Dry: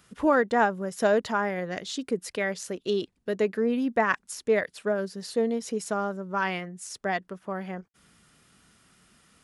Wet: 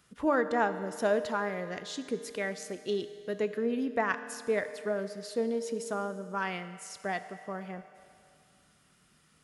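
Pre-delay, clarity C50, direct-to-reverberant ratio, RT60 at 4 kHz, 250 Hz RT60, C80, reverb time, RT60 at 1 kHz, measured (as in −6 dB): 7 ms, 11.5 dB, 10.5 dB, 2.3 s, 2.4 s, 12.5 dB, 2.4 s, 2.4 s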